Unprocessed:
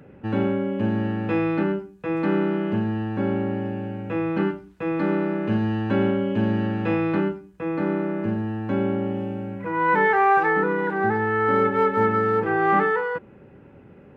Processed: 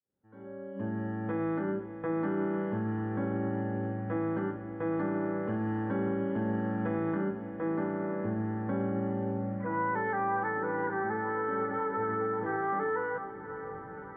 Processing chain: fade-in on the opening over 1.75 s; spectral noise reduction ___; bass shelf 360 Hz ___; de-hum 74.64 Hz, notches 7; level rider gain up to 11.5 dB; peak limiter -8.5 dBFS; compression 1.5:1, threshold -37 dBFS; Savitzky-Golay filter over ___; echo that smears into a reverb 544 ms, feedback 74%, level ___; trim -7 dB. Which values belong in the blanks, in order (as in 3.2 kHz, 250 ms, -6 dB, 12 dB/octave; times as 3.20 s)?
10 dB, -3 dB, 41 samples, -12.5 dB